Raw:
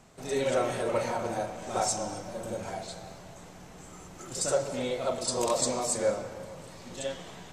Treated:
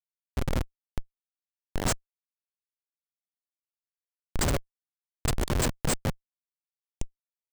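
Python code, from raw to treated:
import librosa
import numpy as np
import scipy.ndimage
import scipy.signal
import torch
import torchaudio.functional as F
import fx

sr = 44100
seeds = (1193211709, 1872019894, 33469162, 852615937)

y = fx.bass_treble(x, sr, bass_db=11, treble_db=11)
y = fx.schmitt(y, sr, flips_db=-17.0)
y = F.gain(torch.from_numpy(y), 3.5).numpy()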